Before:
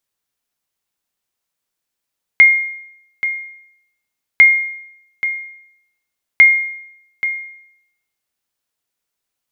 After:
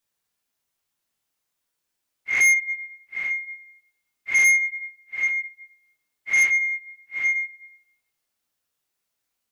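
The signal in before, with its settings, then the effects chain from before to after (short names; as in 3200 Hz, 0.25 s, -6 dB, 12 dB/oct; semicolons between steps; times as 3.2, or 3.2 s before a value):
sonar ping 2130 Hz, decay 0.76 s, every 2.00 s, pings 3, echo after 0.83 s, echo -12 dB -1 dBFS
phase scrambler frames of 0.2 s; soft clip -14.5 dBFS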